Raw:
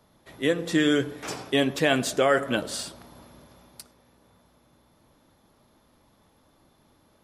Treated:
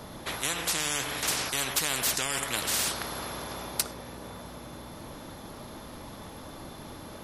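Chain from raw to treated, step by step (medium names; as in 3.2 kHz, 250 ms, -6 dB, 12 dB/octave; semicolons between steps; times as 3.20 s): spectrum-flattening compressor 10:1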